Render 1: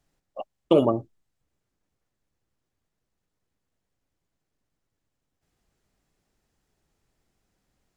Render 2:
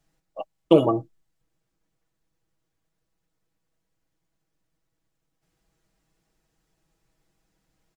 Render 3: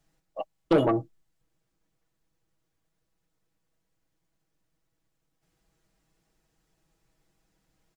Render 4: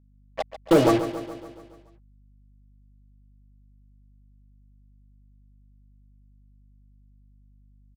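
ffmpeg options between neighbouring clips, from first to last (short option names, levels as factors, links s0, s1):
-af "aecho=1:1:6.2:0.65"
-af "asoftclip=type=tanh:threshold=0.178"
-af "acrusher=bits=4:mix=0:aa=0.5,aeval=exprs='val(0)+0.000891*(sin(2*PI*50*n/s)+sin(2*PI*2*50*n/s)/2+sin(2*PI*3*50*n/s)/3+sin(2*PI*4*50*n/s)/4+sin(2*PI*5*50*n/s)/5)':c=same,aecho=1:1:141|282|423|564|705|846|987:0.251|0.148|0.0874|0.0516|0.0304|0.018|0.0106,volume=1.58"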